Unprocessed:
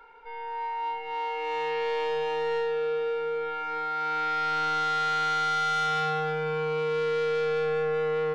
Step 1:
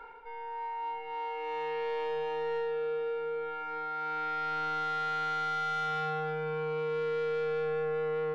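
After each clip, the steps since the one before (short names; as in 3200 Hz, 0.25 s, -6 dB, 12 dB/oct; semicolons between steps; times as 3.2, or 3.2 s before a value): high shelf 3700 Hz -11 dB; reverse; upward compressor, threshold -32 dBFS; reverse; gain -4.5 dB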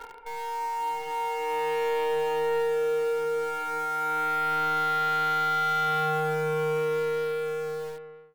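ending faded out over 1.65 s; in parallel at -7 dB: bit-crush 7-bit; on the sum: gain +3.5 dB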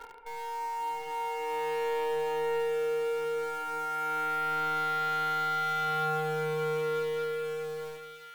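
thin delay 1.196 s, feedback 47%, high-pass 2200 Hz, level -8 dB; gain -4 dB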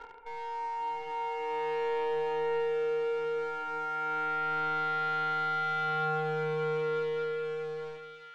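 air absorption 150 m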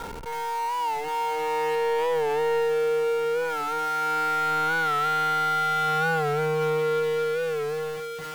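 in parallel at -10.5 dB: Schmitt trigger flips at -49.5 dBFS; on the sum: record warp 45 rpm, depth 100 cents; gain +5 dB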